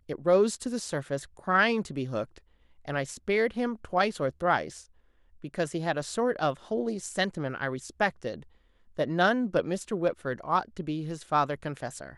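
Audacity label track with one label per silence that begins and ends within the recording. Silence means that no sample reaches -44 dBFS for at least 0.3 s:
2.380000	2.850000	silence
4.830000	5.440000	silence
8.430000	8.970000	silence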